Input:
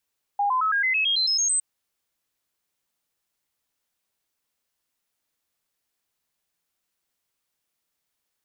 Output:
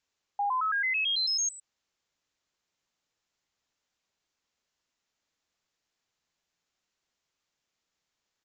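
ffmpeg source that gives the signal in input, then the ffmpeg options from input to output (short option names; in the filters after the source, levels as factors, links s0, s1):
-f lavfi -i "aevalsrc='0.106*clip(min(mod(t,0.11),0.11-mod(t,0.11))/0.005,0,1)*sin(2*PI*812*pow(2,floor(t/0.11)/3)*mod(t,0.11))':d=1.21:s=44100"
-af "alimiter=level_in=1.12:limit=0.0631:level=0:latency=1:release=45,volume=0.891,aresample=16000,aresample=44100"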